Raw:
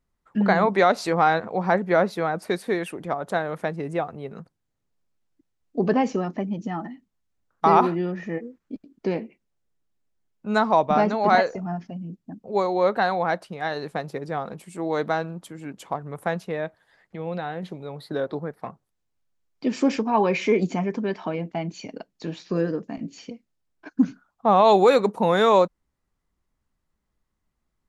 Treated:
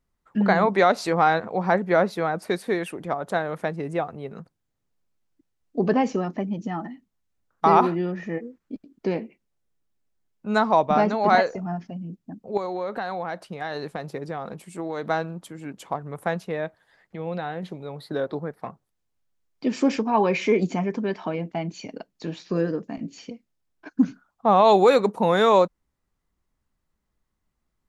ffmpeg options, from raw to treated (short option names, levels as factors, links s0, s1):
-filter_complex "[0:a]asettb=1/sr,asplit=3[s0][s1][s2];[s0]atrim=end=12.574[s3];[s1]atrim=start=12.57:end=15.1,asetpts=PTS-STARTPTS,afade=t=in:d=0.004:c=qsin,afade=t=out:st=2.526:d=0.004:c=qsin,acompressor=threshold=0.0562:ratio=6:attack=3.2:release=140:knee=1:detection=peak[s4];[s2]atrim=start=15.096[s5];[s3][s4]acrossfade=d=0.004:c1=hsin:c2=qsin[s6];[s6][s5]acrossfade=d=0.004:c1=qsin:c2=hsin"